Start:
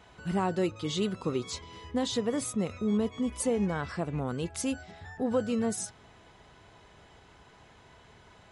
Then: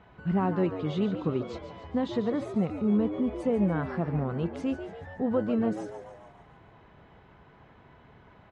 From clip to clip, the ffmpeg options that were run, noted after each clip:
-filter_complex "[0:a]lowpass=2.1k,equalizer=f=160:t=o:w=1.1:g=5,asplit=7[a][b][c][d][e][f][g];[b]adelay=143,afreqshift=96,volume=-11dB[h];[c]adelay=286,afreqshift=192,volume=-16.4dB[i];[d]adelay=429,afreqshift=288,volume=-21.7dB[j];[e]adelay=572,afreqshift=384,volume=-27.1dB[k];[f]adelay=715,afreqshift=480,volume=-32.4dB[l];[g]adelay=858,afreqshift=576,volume=-37.8dB[m];[a][h][i][j][k][l][m]amix=inputs=7:normalize=0"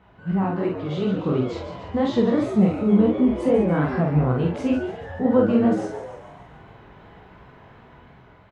-filter_complex "[0:a]dynaudnorm=f=440:g=5:m=6.5dB,flanger=delay=15.5:depth=6.7:speed=2.8,asplit=2[a][b];[b]adelay=47,volume=-3dB[c];[a][c]amix=inputs=2:normalize=0,volume=3dB"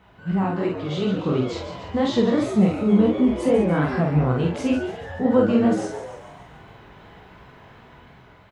-af "highshelf=f=3k:g=9.5"

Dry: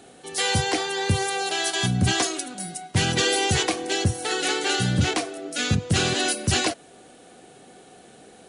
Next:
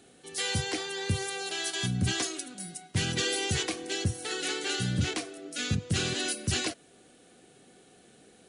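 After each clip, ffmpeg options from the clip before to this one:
-af "equalizer=f=800:t=o:w=1.2:g=-7,volume=-6.5dB"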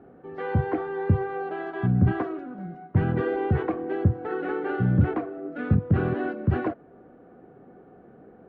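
-af "lowpass=f=1.3k:w=0.5412,lowpass=f=1.3k:w=1.3066,volume=8.5dB"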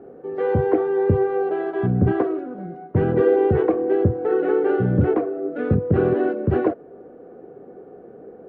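-af "equalizer=f=450:w=1.3:g=12.5"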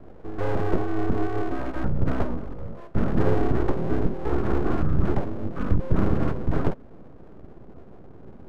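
-af "asubboost=boost=3:cutoff=240,highpass=f=170:t=q:w=0.5412,highpass=f=170:t=q:w=1.307,lowpass=f=2k:t=q:w=0.5176,lowpass=f=2k:t=q:w=0.7071,lowpass=f=2k:t=q:w=1.932,afreqshift=-230,aeval=exprs='abs(val(0))':c=same"

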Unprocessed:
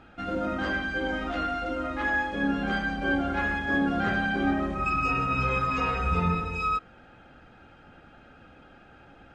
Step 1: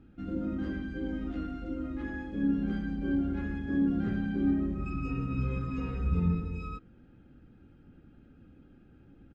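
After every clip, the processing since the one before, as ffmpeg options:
-af "firequalizer=gain_entry='entry(290,0);entry(670,-20);entry(1900,-17)':delay=0.05:min_phase=1"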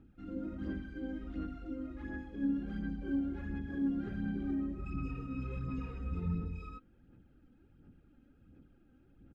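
-af "aphaser=in_gain=1:out_gain=1:delay=3.9:decay=0.46:speed=1.4:type=sinusoidal,volume=-8.5dB"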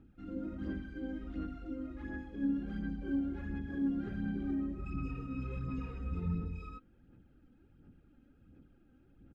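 -af anull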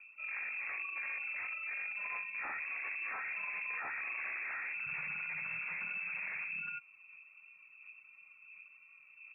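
-filter_complex "[0:a]acrossover=split=1600[a][b];[a]aeval=exprs='0.0106*(abs(mod(val(0)/0.0106+3,4)-2)-1)':c=same[c];[c][b]amix=inputs=2:normalize=0,lowpass=f=2.3k:t=q:w=0.5098,lowpass=f=2.3k:t=q:w=0.6013,lowpass=f=2.3k:t=q:w=0.9,lowpass=f=2.3k:t=q:w=2.563,afreqshift=-2700,volume=4dB"

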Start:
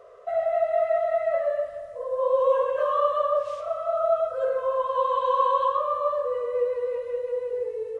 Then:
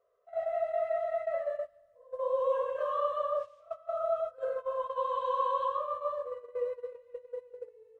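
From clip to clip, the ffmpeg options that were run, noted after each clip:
-af "agate=range=-17dB:threshold=-26dB:ratio=16:detection=peak,volume=-8dB"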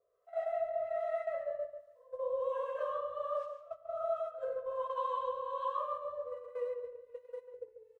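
-filter_complex "[0:a]alimiter=limit=-23dB:level=0:latency=1:release=445,acrossover=split=550[a][b];[a]aeval=exprs='val(0)*(1-0.7/2+0.7/2*cos(2*PI*1.3*n/s))':c=same[c];[b]aeval=exprs='val(0)*(1-0.7/2-0.7/2*cos(2*PI*1.3*n/s))':c=same[d];[c][d]amix=inputs=2:normalize=0,asplit=2[e][f];[f]adelay=142,lowpass=f=2k:p=1,volume=-8dB,asplit=2[g][h];[h]adelay=142,lowpass=f=2k:p=1,volume=0.26,asplit=2[i][j];[j]adelay=142,lowpass=f=2k:p=1,volume=0.26[k];[g][i][k]amix=inputs=3:normalize=0[l];[e][l]amix=inputs=2:normalize=0"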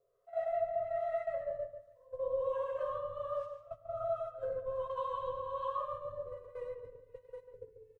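-af "lowshelf=f=330:g=11.5,aecho=1:1:7.3:0.56,asubboost=boost=3.5:cutoff=240,volume=-3dB"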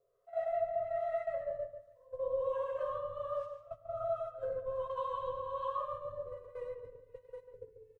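-af anull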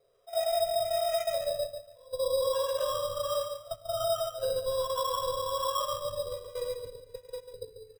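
-filter_complex "[0:a]asplit=2[a][b];[b]alimiter=level_in=8.5dB:limit=-24dB:level=0:latency=1,volume=-8.5dB,volume=-0.5dB[c];[a][c]amix=inputs=2:normalize=0,acrusher=samples=10:mix=1:aa=0.000001,volume=2dB"

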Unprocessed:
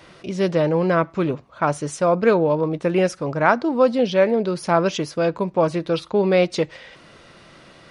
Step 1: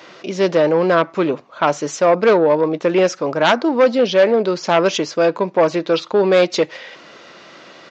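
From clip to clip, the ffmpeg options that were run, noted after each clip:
-af "aresample=16000,aeval=exprs='0.841*sin(PI/2*2.51*val(0)/0.841)':c=same,aresample=44100,highpass=280,volume=-5dB"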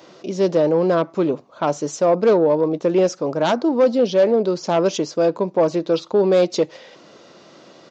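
-af "equalizer=f=2k:w=0.65:g=-12"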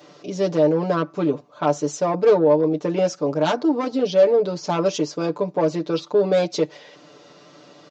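-af "aecho=1:1:6.8:0.92,volume=-4dB"

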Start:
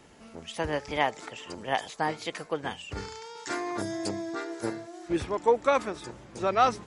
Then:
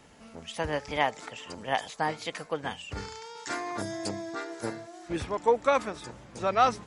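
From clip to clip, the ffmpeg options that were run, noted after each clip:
-af "equalizer=f=360:t=o:w=0.32:g=-6.5"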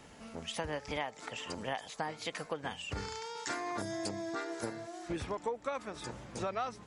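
-af "acompressor=threshold=-35dB:ratio=6,volume=1dB"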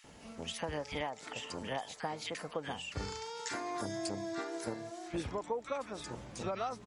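-filter_complex "[0:a]acrossover=split=1500[a][b];[a]adelay=40[c];[c][b]amix=inputs=2:normalize=0"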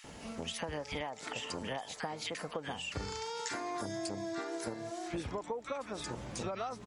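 -af "acompressor=threshold=-43dB:ratio=3,volume=6dB"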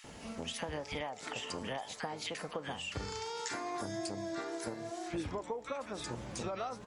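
-af "flanger=delay=8.3:depth=7.9:regen=84:speed=0.98:shape=sinusoidal,volume=4dB"

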